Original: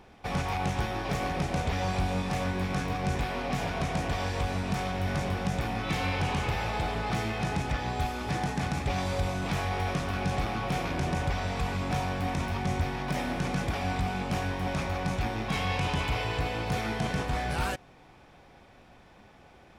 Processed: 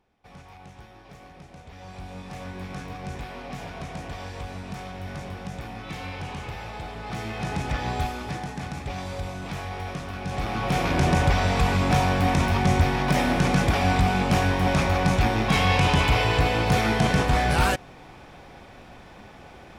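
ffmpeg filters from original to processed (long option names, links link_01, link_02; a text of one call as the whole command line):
ffmpeg -i in.wav -af "volume=16dB,afade=type=in:start_time=1.66:duration=0.99:silence=0.281838,afade=type=in:start_time=6.97:duration=0.95:silence=0.334965,afade=type=out:start_time=7.92:duration=0.5:silence=0.446684,afade=type=in:start_time=10.24:duration=0.81:silence=0.251189" out.wav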